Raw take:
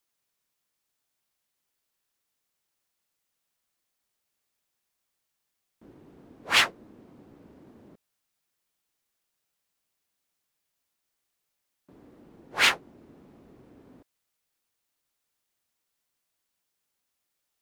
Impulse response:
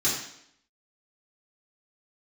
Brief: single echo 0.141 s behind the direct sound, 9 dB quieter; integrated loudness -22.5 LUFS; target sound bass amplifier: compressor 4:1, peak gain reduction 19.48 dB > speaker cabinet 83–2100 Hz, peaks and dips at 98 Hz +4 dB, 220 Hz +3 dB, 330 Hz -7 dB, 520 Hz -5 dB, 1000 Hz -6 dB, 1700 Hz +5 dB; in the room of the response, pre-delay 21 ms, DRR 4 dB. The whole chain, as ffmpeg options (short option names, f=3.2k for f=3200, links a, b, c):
-filter_complex "[0:a]aecho=1:1:141:0.355,asplit=2[a][b];[1:a]atrim=start_sample=2205,adelay=21[c];[b][c]afir=irnorm=-1:irlink=0,volume=-15dB[d];[a][d]amix=inputs=2:normalize=0,acompressor=threshold=-39dB:ratio=4,highpass=f=83:w=0.5412,highpass=f=83:w=1.3066,equalizer=f=98:t=q:w=4:g=4,equalizer=f=220:t=q:w=4:g=3,equalizer=f=330:t=q:w=4:g=-7,equalizer=f=520:t=q:w=4:g=-5,equalizer=f=1k:t=q:w=4:g=-6,equalizer=f=1.7k:t=q:w=4:g=5,lowpass=f=2.1k:w=0.5412,lowpass=f=2.1k:w=1.3066,volume=24dB"